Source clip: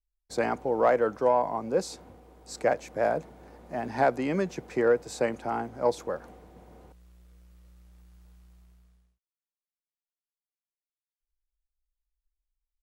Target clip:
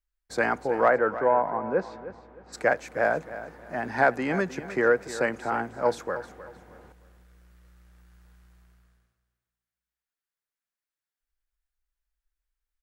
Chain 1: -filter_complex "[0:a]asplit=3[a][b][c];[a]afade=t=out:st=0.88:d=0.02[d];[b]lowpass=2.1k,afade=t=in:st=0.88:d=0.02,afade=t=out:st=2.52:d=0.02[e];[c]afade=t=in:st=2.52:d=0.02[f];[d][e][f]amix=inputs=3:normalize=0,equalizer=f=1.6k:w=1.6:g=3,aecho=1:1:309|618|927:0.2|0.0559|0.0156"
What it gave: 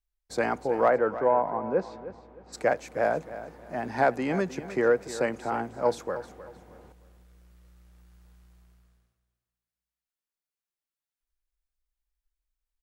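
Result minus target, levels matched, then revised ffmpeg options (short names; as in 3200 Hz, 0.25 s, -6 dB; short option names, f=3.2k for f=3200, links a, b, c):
2000 Hz band -4.5 dB
-filter_complex "[0:a]asplit=3[a][b][c];[a]afade=t=out:st=0.88:d=0.02[d];[b]lowpass=2.1k,afade=t=in:st=0.88:d=0.02,afade=t=out:st=2.52:d=0.02[e];[c]afade=t=in:st=2.52:d=0.02[f];[d][e][f]amix=inputs=3:normalize=0,equalizer=f=1.6k:w=1.6:g=9.5,aecho=1:1:309|618|927:0.2|0.0559|0.0156"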